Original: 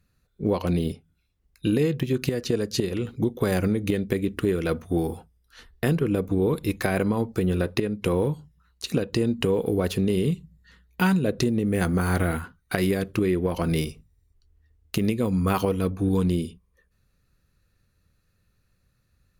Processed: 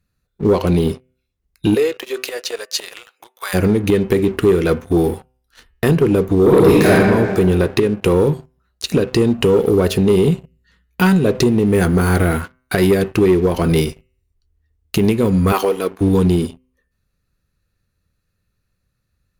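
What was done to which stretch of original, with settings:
1.74–3.53 HPF 410 Hz -> 1000 Hz 24 dB/oct
6.4–6.9 reverb throw, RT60 1.7 s, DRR -6.5 dB
15.52–16.01 HPF 410 Hz
whole clip: de-hum 127.7 Hz, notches 24; dynamic EQ 400 Hz, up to +6 dB, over -41 dBFS, Q 5.3; sample leveller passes 2; gain +1.5 dB

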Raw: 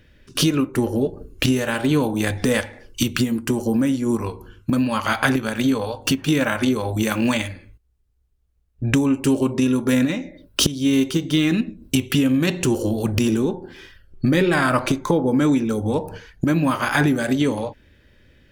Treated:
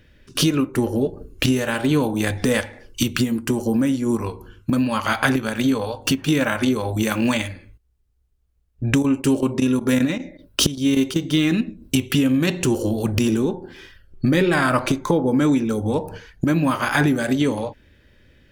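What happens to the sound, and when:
8.85–11.23 chopper 5.2 Hz, depth 65%, duty 90%

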